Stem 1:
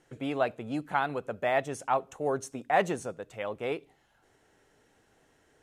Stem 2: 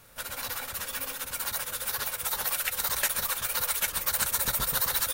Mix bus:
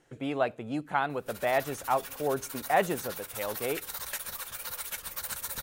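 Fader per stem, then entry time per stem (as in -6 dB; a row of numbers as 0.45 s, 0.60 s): 0.0 dB, -9.0 dB; 0.00 s, 1.10 s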